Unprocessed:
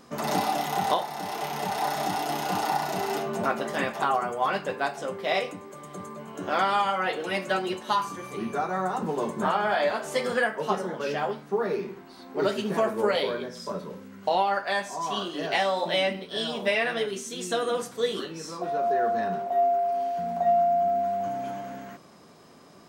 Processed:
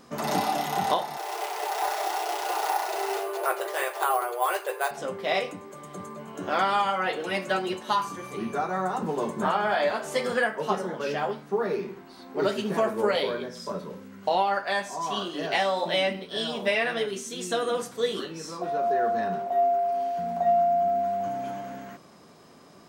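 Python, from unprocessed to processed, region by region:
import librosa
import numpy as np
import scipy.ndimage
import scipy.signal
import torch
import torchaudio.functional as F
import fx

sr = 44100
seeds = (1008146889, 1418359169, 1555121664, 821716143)

y = fx.chain(x, sr, fx.resample_bad(factor=4, down='none', up='hold'),
    fx.brickwall_highpass(low_hz=330.0), at=(1.17, 4.91))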